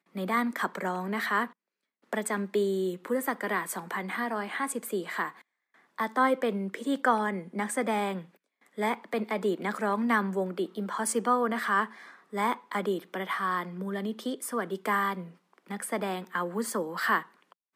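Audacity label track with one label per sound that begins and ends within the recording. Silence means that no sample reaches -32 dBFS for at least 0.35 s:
2.130000	5.290000	sound
5.990000	8.190000	sound
8.780000	11.850000	sound
12.340000	15.210000	sound
15.710000	17.210000	sound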